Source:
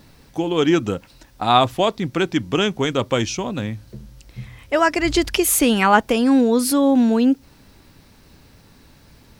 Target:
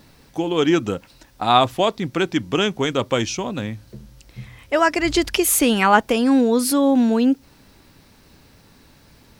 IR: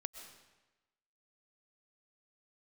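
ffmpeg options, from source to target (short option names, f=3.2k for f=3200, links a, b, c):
-af "lowshelf=f=140:g=-4"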